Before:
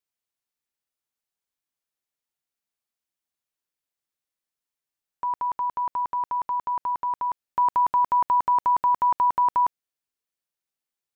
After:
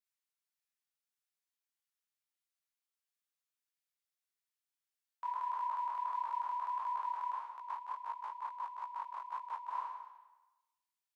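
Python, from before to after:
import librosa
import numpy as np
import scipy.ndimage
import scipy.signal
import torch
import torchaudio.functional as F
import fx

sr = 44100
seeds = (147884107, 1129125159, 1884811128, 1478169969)

y = fx.spec_trails(x, sr, decay_s=1.09)
y = scipy.signal.sosfilt(scipy.signal.butter(2, 1100.0, 'highpass', fs=sr, output='sos'), y)
y = fx.over_compress(y, sr, threshold_db=-29.0, ratio=-0.5)
y = fx.detune_double(y, sr, cents=55)
y = y * librosa.db_to_amplitude(-6.0)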